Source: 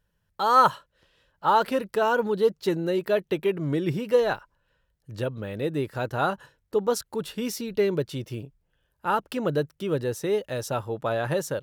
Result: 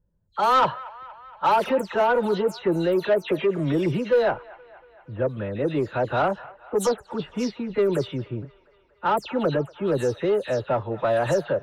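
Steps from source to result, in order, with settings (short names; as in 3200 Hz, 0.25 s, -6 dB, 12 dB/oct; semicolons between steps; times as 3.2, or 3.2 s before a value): spectral delay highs early, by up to 0.148 s; low-pass opened by the level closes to 520 Hz, open at -21 dBFS; dynamic EQ 640 Hz, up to +6 dB, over -35 dBFS, Q 0.99; in parallel at 0 dB: limiter -20 dBFS, peak gain reduction 15 dB; on the sum: soft clip -11 dBFS, distortion -16 dB; on a send: band-limited delay 0.235 s, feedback 64%, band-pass 1400 Hz, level -18.5 dB; on the sum: gain -2 dB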